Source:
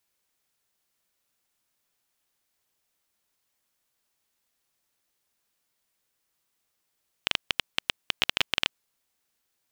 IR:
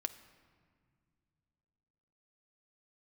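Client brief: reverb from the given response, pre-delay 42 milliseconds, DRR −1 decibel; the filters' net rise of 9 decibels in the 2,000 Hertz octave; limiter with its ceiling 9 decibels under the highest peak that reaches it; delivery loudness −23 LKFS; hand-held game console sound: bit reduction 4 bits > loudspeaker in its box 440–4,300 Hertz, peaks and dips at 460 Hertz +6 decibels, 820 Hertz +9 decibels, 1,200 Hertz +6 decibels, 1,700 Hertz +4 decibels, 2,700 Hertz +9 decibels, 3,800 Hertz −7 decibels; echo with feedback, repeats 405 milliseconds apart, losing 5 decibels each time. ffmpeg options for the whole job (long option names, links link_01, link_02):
-filter_complex "[0:a]equalizer=frequency=2000:width_type=o:gain=4,alimiter=limit=-11.5dB:level=0:latency=1,aecho=1:1:405|810|1215|1620|2025|2430|2835:0.562|0.315|0.176|0.0988|0.0553|0.031|0.0173,asplit=2[link_01][link_02];[1:a]atrim=start_sample=2205,adelay=42[link_03];[link_02][link_03]afir=irnorm=-1:irlink=0,volume=1.5dB[link_04];[link_01][link_04]amix=inputs=2:normalize=0,acrusher=bits=3:mix=0:aa=0.000001,highpass=440,equalizer=frequency=460:width_type=q:width=4:gain=6,equalizer=frequency=820:width_type=q:width=4:gain=9,equalizer=frequency=1200:width_type=q:width=4:gain=6,equalizer=frequency=1700:width_type=q:width=4:gain=4,equalizer=frequency=2700:width_type=q:width=4:gain=9,equalizer=frequency=3800:width_type=q:width=4:gain=-7,lowpass=frequency=4300:width=0.5412,lowpass=frequency=4300:width=1.3066,volume=5dB"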